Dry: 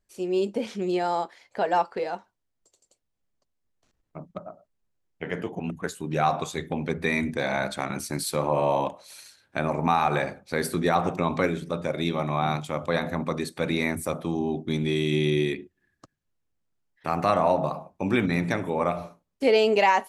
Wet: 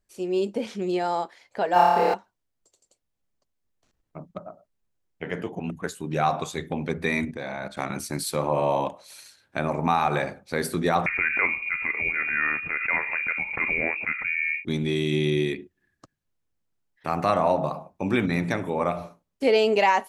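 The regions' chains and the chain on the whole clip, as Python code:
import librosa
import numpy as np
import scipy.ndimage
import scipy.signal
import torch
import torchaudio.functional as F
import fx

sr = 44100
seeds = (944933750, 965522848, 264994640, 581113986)

y = fx.chain(x, sr, fx.law_mismatch(coded='mu'),
    fx.room_flutter(wall_m=4.8, rt60_s=1.5), at=(1.73, 2.14))
y = fx.chain(y, sr, fx.high_shelf(hz=4800.0, db=-7.0),
    fx.level_steps(step_db=11), at=(7.25, 7.77))
y = fx.chain(y, sr, fx.freq_invert(carrier_hz=2600),
    fx.pre_swell(db_per_s=76.0), at=(11.06, 14.65))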